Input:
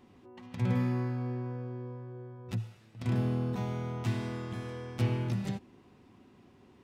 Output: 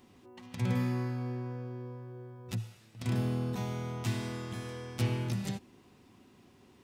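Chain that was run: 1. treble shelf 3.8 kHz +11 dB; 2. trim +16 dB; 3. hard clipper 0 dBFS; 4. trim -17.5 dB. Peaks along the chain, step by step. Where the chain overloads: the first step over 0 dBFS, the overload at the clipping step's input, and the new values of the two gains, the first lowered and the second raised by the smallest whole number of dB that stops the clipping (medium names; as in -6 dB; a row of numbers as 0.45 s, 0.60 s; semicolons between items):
-17.5 dBFS, -1.5 dBFS, -1.5 dBFS, -19.0 dBFS; nothing clips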